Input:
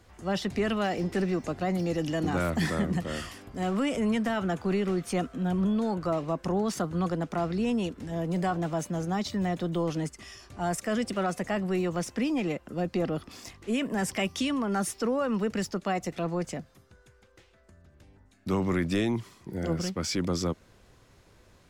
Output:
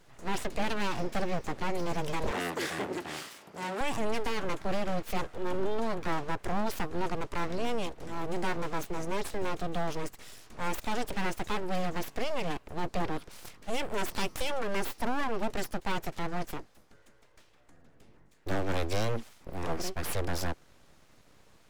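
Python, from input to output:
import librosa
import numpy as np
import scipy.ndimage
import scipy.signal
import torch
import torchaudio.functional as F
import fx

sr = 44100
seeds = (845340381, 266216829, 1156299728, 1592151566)

y = np.abs(x)
y = fx.highpass(y, sr, hz=190.0, slope=12, at=(2.31, 3.81))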